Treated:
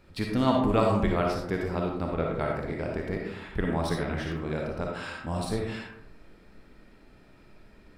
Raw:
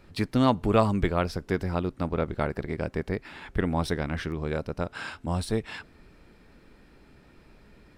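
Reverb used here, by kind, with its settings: algorithmic reverb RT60 0.78 s, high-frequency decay 0.45×, pre-delay 15 ms, DRR -0.5 dB; trim -3.5 dB

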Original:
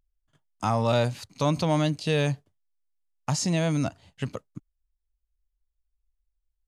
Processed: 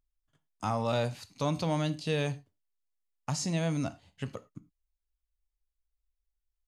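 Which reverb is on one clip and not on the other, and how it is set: gated-style reverb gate 130 ms falling, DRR 11.5 dB; trim -6 dB

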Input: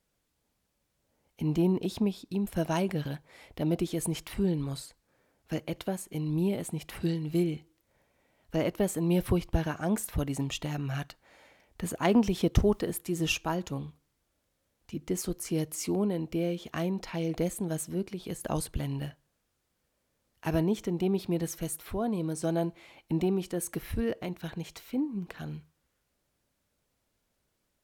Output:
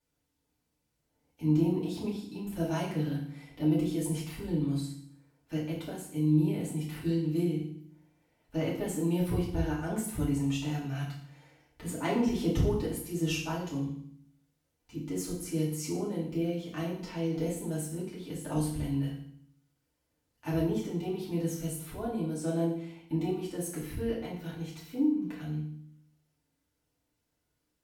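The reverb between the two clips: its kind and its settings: FDN reverb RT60 0.61 s, low-frequency decay 1.5×, high-frequency decay 1×, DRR -7.5 dB; trim -11.5 dB

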